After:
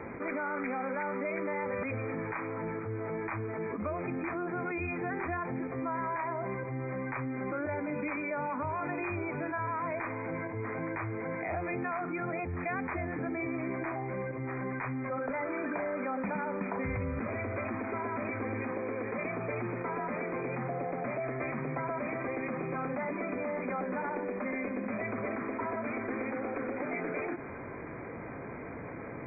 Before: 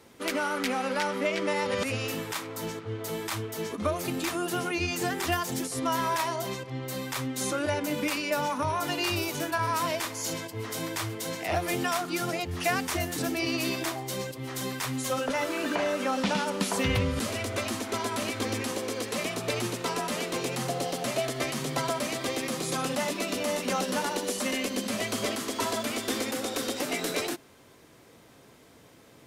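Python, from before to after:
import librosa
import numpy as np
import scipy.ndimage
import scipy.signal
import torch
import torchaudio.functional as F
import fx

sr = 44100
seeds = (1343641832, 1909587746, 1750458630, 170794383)

y = fx.brickwall_lowpass(x, sr, high_hz=2500.0)
y = fx.env_flatten(y, sr, amount_pct=70)
y = y * 10.0 ** (-9.0 / 20.0)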